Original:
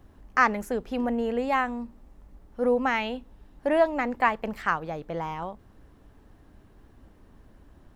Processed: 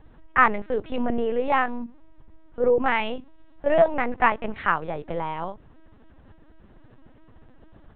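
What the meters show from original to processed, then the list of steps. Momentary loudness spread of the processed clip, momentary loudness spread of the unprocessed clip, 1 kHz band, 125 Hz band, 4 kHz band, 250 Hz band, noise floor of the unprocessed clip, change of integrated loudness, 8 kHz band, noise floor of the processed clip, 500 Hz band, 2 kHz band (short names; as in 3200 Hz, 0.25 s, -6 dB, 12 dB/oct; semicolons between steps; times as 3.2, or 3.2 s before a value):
13 LU, 13 LU, +3.0 dB, +2.5 dB, +1.5 dB, -0.5 dB, -56 dBFS, +3.0 dB, n/a, -52 dBFS, +3.5 dB, +2.5 dB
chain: LPC vocoder at 8 kHz pitch kept; gain +3.5 dB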